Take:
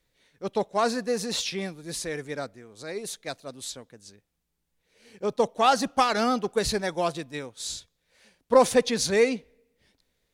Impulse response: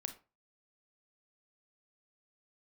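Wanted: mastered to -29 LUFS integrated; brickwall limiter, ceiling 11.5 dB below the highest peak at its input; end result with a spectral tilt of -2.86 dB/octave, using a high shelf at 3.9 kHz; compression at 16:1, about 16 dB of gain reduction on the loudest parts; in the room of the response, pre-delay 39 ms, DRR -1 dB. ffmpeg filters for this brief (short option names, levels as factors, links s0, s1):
-filter_complex "[0:a]highshelf=f=3900:g=7.5,acompressor=threshold=0.0398:ratio=16,alimiter=level_in=2:limit=0.0631:level=0:latency=1,volume=0.501,asplit=2[s0][s1];[1:a]atrim=start_sample=2205,adelay=39[s2];[s1][s2]afir=irnorm=-1:irlink=0,volume=1.41[s3];[s0][s3]amix=inputs=2:normalize=0,volume=2.37"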